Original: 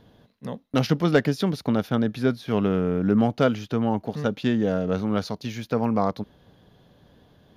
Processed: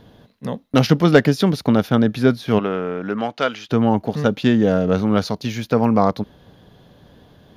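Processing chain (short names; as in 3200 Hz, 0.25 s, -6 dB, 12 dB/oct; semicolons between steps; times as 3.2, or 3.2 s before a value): 2.58–3.68 band-pass 1200 Hz -> 3000 Hz, Q 0.5; gain +7 dB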